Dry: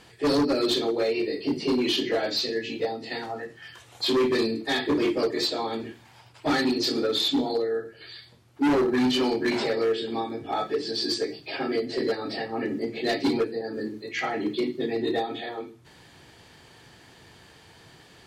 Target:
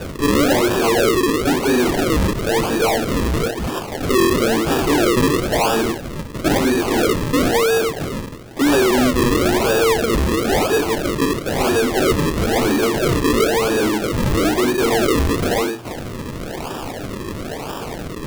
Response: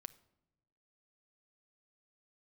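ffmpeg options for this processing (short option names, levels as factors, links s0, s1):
-filter_complex "[0:a]asplit=2[s0][s1];[s1]highpass=f=720:p=1,volume=35.5,asoftclip=type=tanh:threshold=0.15[s2];[s0][s2]amix=inputs=2:normalize=0,lowpass=f=1800:p=1,volume=0.501,acrusher=samples=41:mix=1:aa=0.000001:lfo=1:lforange=41:lforate=1,volume=2.11"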